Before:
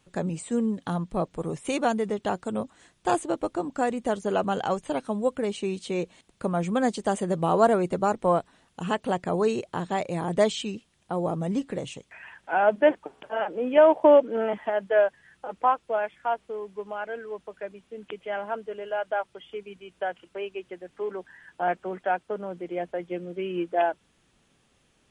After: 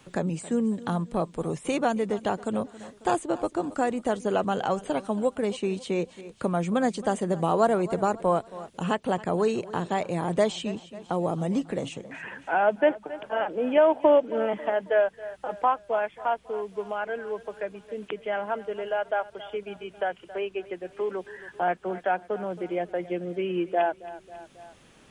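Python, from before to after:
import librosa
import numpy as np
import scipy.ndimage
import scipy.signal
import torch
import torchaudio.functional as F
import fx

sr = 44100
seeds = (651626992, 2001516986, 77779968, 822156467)

y = fx.echo_feedback(x, sr, ms=272, feedback_pct=43, wet_db=-19)
y = fx.band_squash(y, sr, depth_pct=40)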